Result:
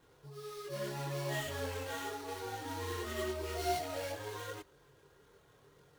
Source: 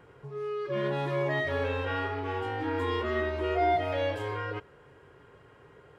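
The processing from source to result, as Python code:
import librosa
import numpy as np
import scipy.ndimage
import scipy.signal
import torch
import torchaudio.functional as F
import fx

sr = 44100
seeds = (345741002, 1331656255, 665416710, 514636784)

y = fx.sample_hold(x, sr, seeds[0], rate_hz=5000.0, jitter_pct=20)
y = fx.chorus_voices(y, sr, voices=6, hz=0.63, base_ms=24, depth_ms=3.9, mix_pct=55)
y = y * librosa.db_to_amplitude(-5.5)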